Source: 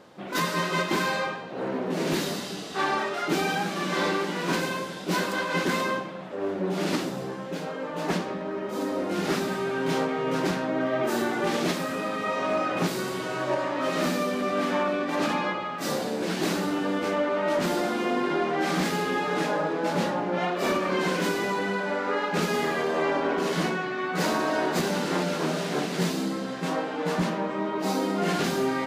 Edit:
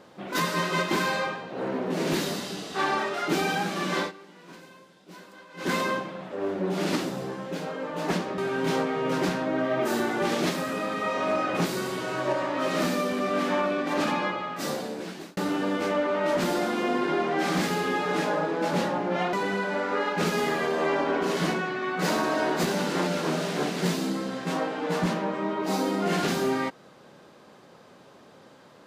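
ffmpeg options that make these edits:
-filter_complex "[0:a]asplit=6[a][b][c][d][e][f];[a]atrim=end=4.12,asetpts=PTS-STARTPTS,afade=t=out:st=3.98:d=0.14:silence=0.0944061[g];[b]atrim=start=4.12:end=5.57,asetpts=PTS-STARTPTS,volume=-20.5dB[h];[c]atrim=start=5.57:end=8.382,asetpts=PTS-STARTPTS,afade=t=in:d=0.14:silence=0.0944061[i];[d]atrim=start=9.598:end=16.59,asetpts=PTS-STARTPTS,afade=t=out:st=5.842:d=1.15:c=qsin[j];[e]atrim=start=16.59:end=20.552,asetpts=PTS-STARTPTS,afade=t=in:d=0.004:c=hsin[k];[f]atrim=start=21.488[l];[g][h][i]concat=n=3:v=0:a=1[m];[j][k]concat=n=2:v=0:a=1[n];[m][n]acrossfade=d=0.004:c1=hsin:c2=hsin[o];[o][l]acrossfade=d=0.004:c1=hsin:c2=hsin"

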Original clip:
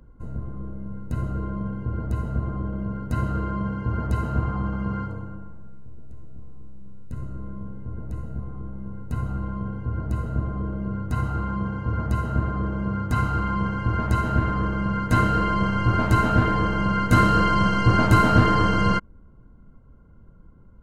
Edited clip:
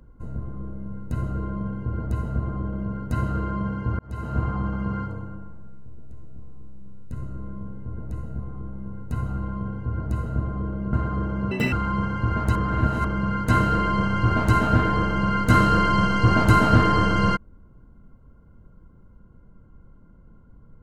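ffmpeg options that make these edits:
-filter_complex "[0:a]asplit=7[a][b][c][d][e][f][g];[a]atrim=end=3.99,asetpts=PTS-STARTPTS,afade=t=out:st=3.986:d=0.004:c=hsin[h];[b]atrim=start=3.99:end=10.932,asetpts=PTS-STARTPTS,afade=t=in:d=0.43[i];[c]atrim=start=12.358:end=12.944[j];[d]atrim=start=12.94:end=13.35,asetpts=PTS-STARTPTS,asetrate=84231,aresample=44100,atrim=end_sample=9466,asetpts=PTS-STARTPTS[k];[e]atrim=start=13.346:end=14.182[l];[f]atrim=start=14.178:end=14.672,asetpts=PTS-STARTPTS,areverse[m];[g]atrim=start=14.668[n];[h][i]concat=n=2:v=0:a=1[o];[o][j]acrossfade=d=0.004:c1=hsin:c2=hsin[p];[p][k]acrossfade=d=0.004:c1=hsin:c2=hsin[q];[q][l]acrossfade=d=0.004:c1=hsin:c2=hsin[r];[r][m]acrossfade=d=0.004:c1=hsin:c2=hsin[s];[s][n]acrossfade=d=0.004:c1=hsin:c2=hsin"

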